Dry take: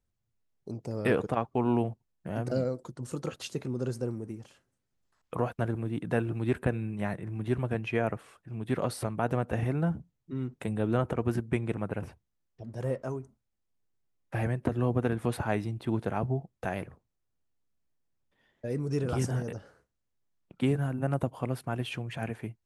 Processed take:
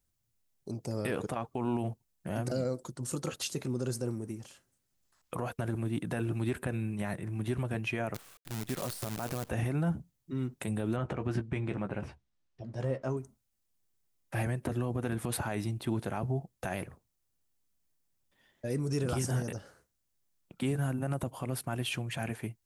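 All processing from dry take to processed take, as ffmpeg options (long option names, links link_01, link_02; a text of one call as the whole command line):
ffmpeg -i in.wav -filter_complex "[0:a]asettb=1/sr,asplit=3[link_01][link_02][link_03];[link_01]atrim=end=8.144[link_04];[link_02]atrim=start=8.14:end=9.49,asetpts=PTS-STARTPTS,afade=type=in:duration=0.004:curve=qsin,afade=type=out:start_time=1.346:duration=0.004:curve=qsin,highshelf=frequency=4700:gain=-9,acrusher=bits=7:dc=4:mix=0:aa=0.000001[link_05];[link_03]atrim=start=9.486[link_06];[link_04][link_05]acrossfade=duration=0.004:curve1=hsin:curve2=qsin[link_07];[link_07][link_06]acrossfade=duration=0.004:curve1=qsin:curve2=hsin,asettb=1/sr,asplit=3[link_08][link_09][link_10];[link_08]atrim=end=10.964[link_11];[link_09]atrim=start=10.96:end=13.17,asetpts=PTS-STARTPTS,afade=type=in:duration=0.004:curve=qsin,afade=type=out:start_time=2.206:duration=0.004:curve=qsin,lowpass=4300,asplit=2[link_12][link_13];[link_13]adelay=15,volume=-9dB[link_14];[link_12][link_14]amix=inputs=2:normalize=0,atrim=end_sample=97461[link_15];[link_10]atrim=start=13.166[link_16];[link_11][link_15]acrossfade=duration=0.004:curve1=hsin:curve2=qsin[link_17];[link_17][link_16]acrossfade=duration=0.004:curve1=qsin:curve2=hsin,highshelf=frequency=4600:gain=12,bandreject=frequency=460:width=14,alimiter=limit=-22.5dB:level=0:latency=1:release=50" out.wav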